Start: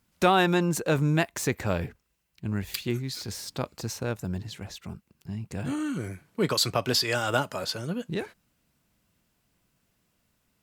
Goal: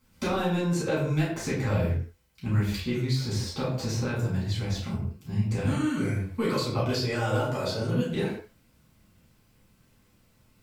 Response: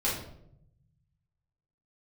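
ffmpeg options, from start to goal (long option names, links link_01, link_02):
-filter_complex "[0:a]asoftclip=type=tanh:threshold=-14dB,acrossover=split=850|7300[link_01][link_02][link_03];[link_01]acompressor=threshold=-35dB:ratio=4[link_04];[link_02]acompressor=threshold=-42dB:ratio=4[link_05];[link_03]acompressor=threshold=-59dB:ratio=4[link_06];[link_04][link_05][link_06]amix=inputs=3:normalize=0[link_07];[1:a]atrim=start_sample=2205,afade=type=out:start_time=0.26:duration=0.01,atrim=end_sample=11907[link_08];[link_07][link_08]afir=irnorm=-1:irlink=0,volume=-1dB"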